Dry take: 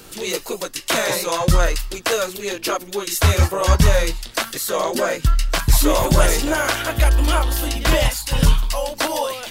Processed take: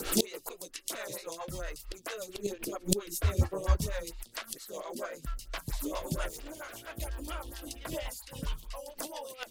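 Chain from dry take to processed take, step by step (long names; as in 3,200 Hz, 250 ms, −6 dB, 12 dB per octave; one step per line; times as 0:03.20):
in parallel at −9 dB: floating-point word with a short mantissa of 2 bits
on the sum: high-shelf EQ 3,300 Hz +5.5 dB
0:06.28–0:06.95: gain into a clipping stage and back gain 17.5 dB
rotating-speaker cabinet horn 7.5 Hz
gate with flip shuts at −15 dBFS, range −26 dB
0:02.29–0:03.77: low-shelf EQ 390 Hz +12 dB
phaser with staggered stages 4.4 Hz
level +8 dB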